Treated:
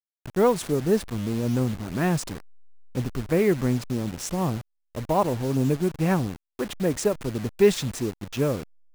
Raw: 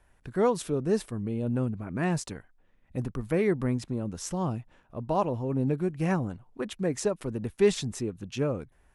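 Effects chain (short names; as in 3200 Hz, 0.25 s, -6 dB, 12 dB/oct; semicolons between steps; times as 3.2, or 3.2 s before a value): level-crossing sampler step -37 dBFS; gain +4.5 dB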